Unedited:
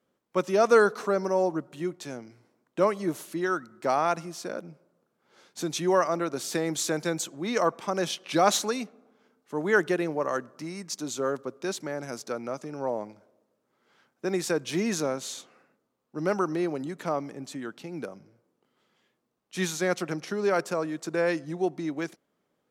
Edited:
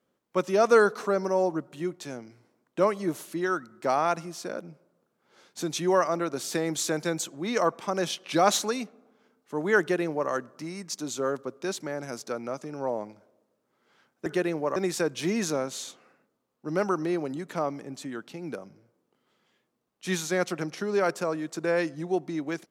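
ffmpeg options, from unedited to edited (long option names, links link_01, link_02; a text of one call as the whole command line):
ffmpeg -i in.wav -filter_complex "[0:a]asplit=3[link_01][link_02][link_03];[link_01]atrim=end=14.262[link_04];[link_02]atrim=start=9.798:end=10.302[link_05];[link_03]atrim=start=14.258[link_06];[link_04][link_05]acrossfade=duration=0.004:curve1=hsin:curve2=hsin[link_07];[link_07][link_06]acrossfade=duration=0.004:curve1=hsin:curve2=hsin" out.wav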